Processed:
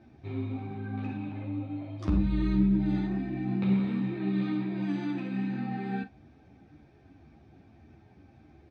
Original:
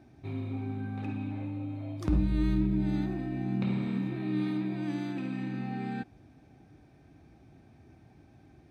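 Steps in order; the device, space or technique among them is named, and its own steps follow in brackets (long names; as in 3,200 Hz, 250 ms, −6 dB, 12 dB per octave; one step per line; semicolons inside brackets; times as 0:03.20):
double-tracking delay 41 ms −12.5 dB
string-machine ensemble chorus (string-ensemble chorus; low-pass filter 4,900 Hz 12 dB per octave)
level +4 dB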